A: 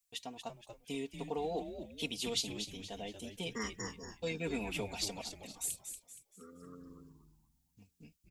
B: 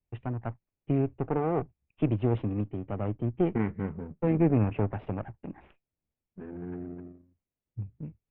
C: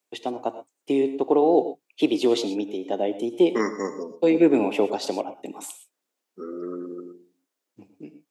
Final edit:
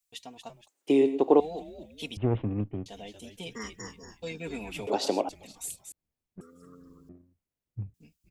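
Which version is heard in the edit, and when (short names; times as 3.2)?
A
0.68–1.4 from C
2.17–2.86 from B
4.87–5.29 from C
5.92–6.41 from B
7.09–7.94 from B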